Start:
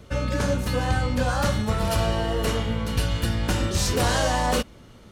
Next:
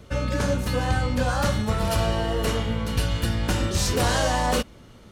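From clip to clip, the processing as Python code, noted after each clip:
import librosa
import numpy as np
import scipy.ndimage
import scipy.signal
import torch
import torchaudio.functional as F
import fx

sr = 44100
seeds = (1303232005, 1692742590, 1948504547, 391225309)

y = x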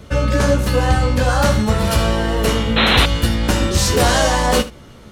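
y = fx.room_early_taps(x, sr, ms=(14, 77), db=(-7.5, -15.5))
y = fx.spec_paint(y, sr, seeds[0], shape='noise', start_s=2.76, length_s=0.3, low_hz=220.0, high_hz=4200.0, level_db=-22.0)
y = y * 10.0 ** (7.0 / 20.0)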